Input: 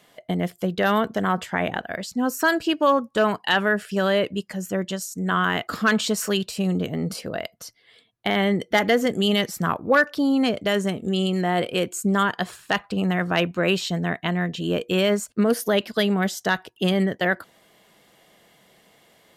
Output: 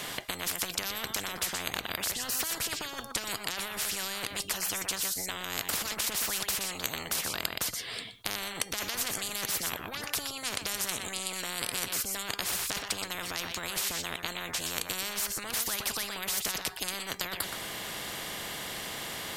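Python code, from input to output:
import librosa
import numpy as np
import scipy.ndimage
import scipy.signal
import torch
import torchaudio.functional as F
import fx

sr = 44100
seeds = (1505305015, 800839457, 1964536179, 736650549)

p1 = fx.peak_eq(x, sr, hz=480.0, db=-6.0, octaves=1.5)
p2 = fx.comb_fb(p1, sr, f0_hz=400.0, decay_s=0.32, harmonics='all', damping=0.0, mix_pct=40)
p3 = fx.over_compress(p2, sr, threshold_db=-32.0, ratio=-1.0)
p4 = p3 + fx.echo_single(p3, sr, ms=122, db=-16.5, dry=0)
p5 = fx.spectral_comp(p4, sr, ratio=10.0)
y = p5 * librosa.db_to_amplitude(6.0)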